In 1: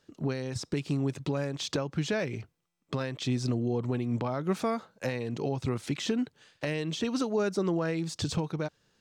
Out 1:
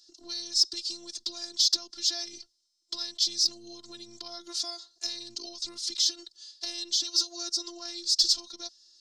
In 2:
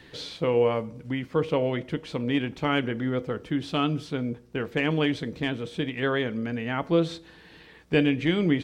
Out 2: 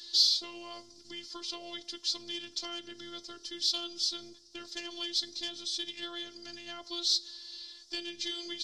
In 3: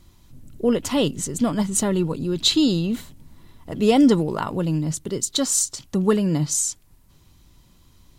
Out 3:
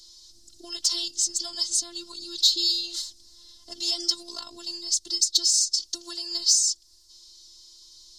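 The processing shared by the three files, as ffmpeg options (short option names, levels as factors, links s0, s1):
-filter_complex "[0:a]acrossover=split=88|670[s0][s1][s2];[s0]acompressor=threshold=0.00562:ratio=4[s3];[s1]acompressor=threshold=0.02:ratio=4[s4];[s2]acompressor=threshold=0.0251:ratio=4[s5];[s3][s4][s5]amix=inputs=3:normalize=0,lowpass=f=4900:t=q:w=3.3,acrossover=split=320[s6][s7];[s7]aexciter=amount=11.7:drive=7.6:freq=3700[s8];[s6][s8]amix=inputs=2:normalize=0,afftfilt=real='hypot(re,im)*cos(PI*b)':imag='0':win_size=512:overlap=0.75,volume=0.355"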